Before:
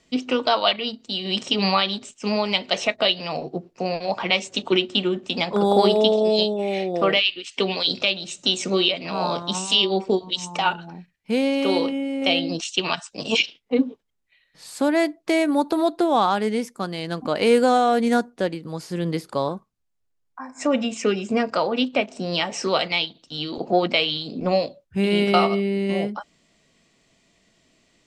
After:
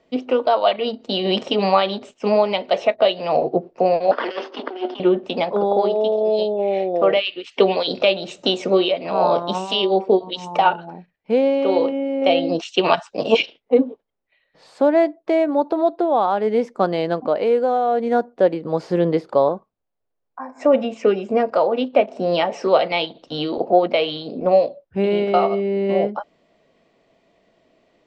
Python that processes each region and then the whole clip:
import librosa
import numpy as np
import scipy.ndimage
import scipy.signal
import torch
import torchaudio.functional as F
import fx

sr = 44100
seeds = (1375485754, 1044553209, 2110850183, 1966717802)

y = fx.chain(x, sr, fx.lower_of_two(delay_ms=0.64),
    fx.cheby1_bandpass(low_hz=250.0, high_hz=5400.0, order=5),
    fx.over_compress(threshold_db=-32.0, ratio=-1.0), at=(4.11, 5.0))
y = scipy.signal.sosfilt(scipy.signal.butter(2, 4200.0, 'lowpass', fs=sr, output='sos'), y)
y = fx.peak_eq(y, sr, hz=580.0, db=14.5, octaves=2.0)
y = fx.rider(y, sr, range_db=10, speed_s=0.5)
y = y * librosa.db_to_amplitude(-7.0)